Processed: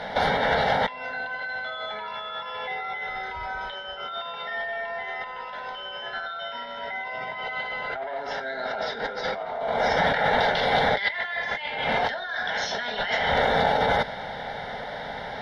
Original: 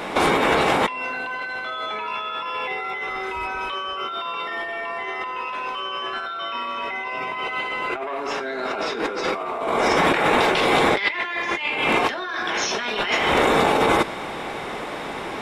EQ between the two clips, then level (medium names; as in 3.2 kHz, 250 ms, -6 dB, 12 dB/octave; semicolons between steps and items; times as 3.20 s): distance through air 68 m; static phaser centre 1.7 kHz, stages 8; 0.0 dB